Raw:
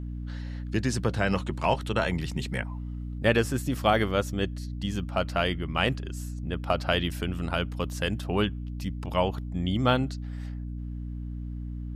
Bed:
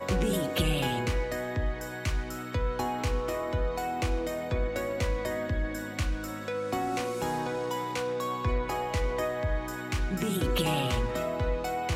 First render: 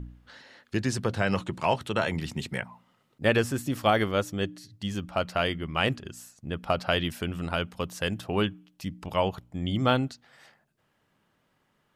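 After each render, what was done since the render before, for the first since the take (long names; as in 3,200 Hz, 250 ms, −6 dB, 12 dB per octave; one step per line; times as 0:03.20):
hum removal 60 Hz, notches 5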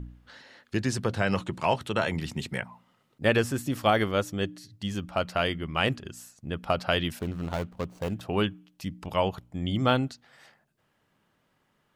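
0:07.19–0:08.21: running median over 25 samples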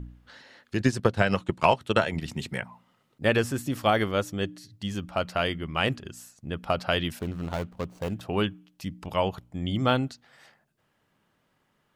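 0:00.80–0:02.28: transient designer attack +8 dB, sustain −8 dB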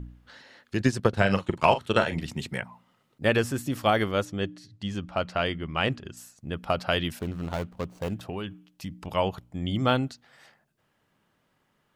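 0:01.09–0:02.23: double-tracking delay 41 ms −10 dB
0:04.25–0:06.17: high-frequency loss of the air 55 metres
0:08.14–0:09.07: downward compressor, threshold −29 dBFS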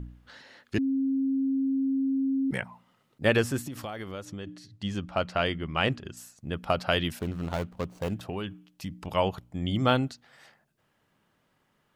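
0:00.78–0:02.51: beep over 269 Hz −23.5 dBFS
0:03.63–0:04.47: downward compressor 8 to 1, threshold −33 dBFS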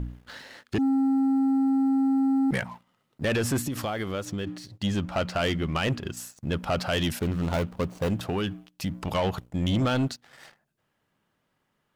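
brickwall limiter −18.5 dBFS, peak gain reduction 9 dB
leveller curve on the samples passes 2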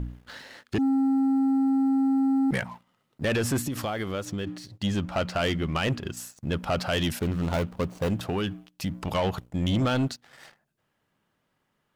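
no processing that can be heard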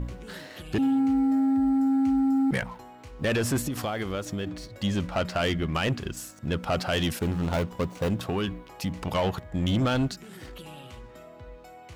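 mix in bed −16 dB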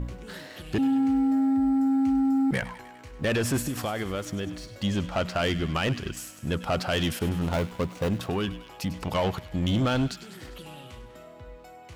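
delay with a high-pass on its return 100 ms, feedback 67%, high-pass 1,700 Hz, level −13 dB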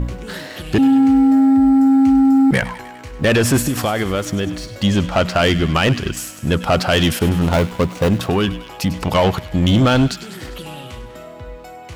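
level +11 dB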